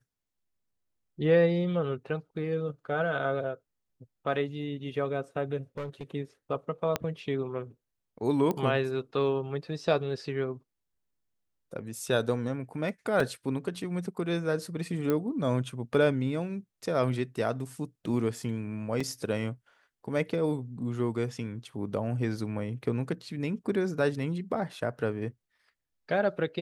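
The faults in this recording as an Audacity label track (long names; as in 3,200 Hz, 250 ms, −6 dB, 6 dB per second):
5.770000	6.030000	clipping −32.5 dBFS
6.960000	6.960000	click −12 dBFS
8.510000	8.510000	click −17 dBFS
13.200000	13.200000	drop-out 2.9 ms
15.100000	15.100000	click −16 dBFS
19.000000	19.000000	drop-out 4.6 ms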